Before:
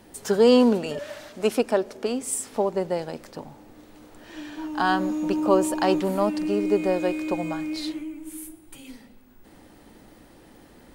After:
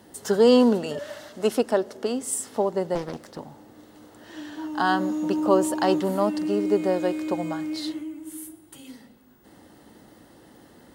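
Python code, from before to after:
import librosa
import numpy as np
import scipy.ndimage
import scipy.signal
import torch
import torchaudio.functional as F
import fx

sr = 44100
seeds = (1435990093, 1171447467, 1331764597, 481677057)

y = scipy.signal.sosfilt(scipy.signal.butter(2, 75.0, 'highpass', fs=sr, output='sos'), x)
y = fx.notch(y, sr, hz=2400.0, q=5.8)
y = fx.doppler_dist(y, sr, depth_ms=0.65, at=(2.95, 3.38))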